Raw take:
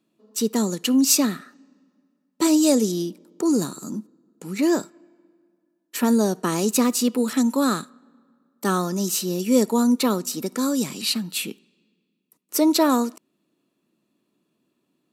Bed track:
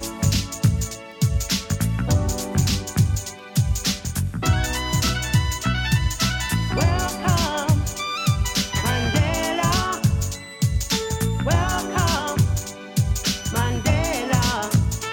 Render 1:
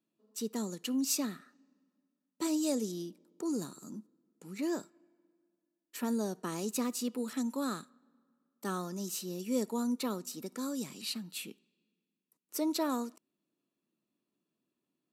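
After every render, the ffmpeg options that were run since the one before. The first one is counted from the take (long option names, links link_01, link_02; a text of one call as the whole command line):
ffmpeg -i in.wav -af "volume=-14dB" out.wav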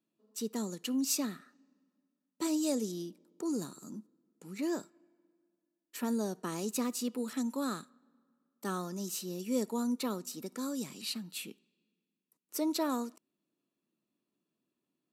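ffmpeg -i in.wav -af anull out.wav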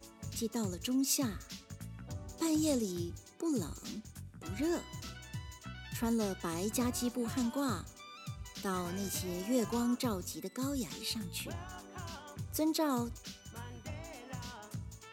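ffmpeg -i in.wav -i bed.wav -filter_complex "[1:a]volume=-24.5dB[link_01];[0:a][link_01]amix=inputs=2:normalize=0" out.wav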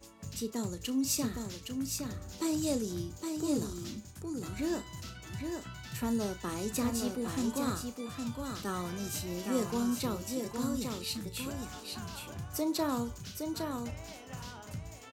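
ffmpeg -i in.wav -filter_complex "[0:a]asplit=2[link_01][link_02];[link_02]adelay=34,volume=-12dB[link_03];[link_01][link_03]amix=inputs=2:normalize=0,asplit=2[link_04][link_05];[link_05]aecho=0:1:814:0.562[link_06];[link_04][link_06]amix=inputs=2:normalize=0" out.wav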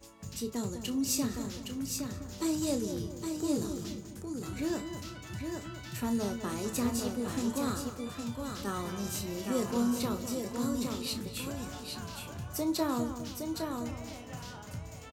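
ffmpeg -i in.wav -filter_complex "[0:a]asplit=2[link_01][link_02];[link_02]adelay=25,volume=-11dB[link_03];[link_01][link_03]amix=inputs=2:normalize=0,asplit=2[link_04][link_05];[link_05]adelay=203,lowpass=frequency=1600:poles=1,volume=-9dB,asplit=2[link_06][link_07];[link_07]adelay=203,lowpass=frequency=1600:poles=1,volume=0.47,asplit=2[link_08][link_09];[link_09]adelay=203,lowpass=frequency=1600:poles=1,volume=0.47,asplit=2[link_10][link_11];[link_11]adelay=203,lowpass=frequency=1600:poles=1,volume=0.47,asplit=2[link_12][link_13];[link_13]adelay=203,lowpass=frequency=1600:poles=1,volume=0.47[link_14];[link_04][link_06][link_08][link_10][link_12][link_14]amix=inputs=6:normalize=0" out.wav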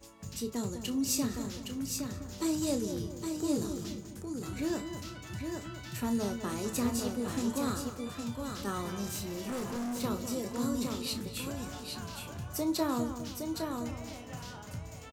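ffmpeg -i in.wav -filter_complex "[0:a]asettb=1/sr,asplit=3[link_01][link_02][link_03];[link_01]atrim=end=9.054[link_04];[link_02]atrim=start=9.05:end=10.04,asetpts=PTS-STARTPTS,afade=type=in:duration=0.004:curve=qsin,afade=type=out:start_time=0.986:duration=0.004:curve=qsin,volume=33.5dB,asoftclip=hard,volume=-33.5dB[link_05];[link_03]atrim=start=10.036[link_06];[link_04][link_05]acrossfade=duration=0.004:curve1=hsin:curve2=qsin[link_07];[link_07][link_06]acrossfade=duration=0.004:curve1=qsin:curve2=hsin" out.wav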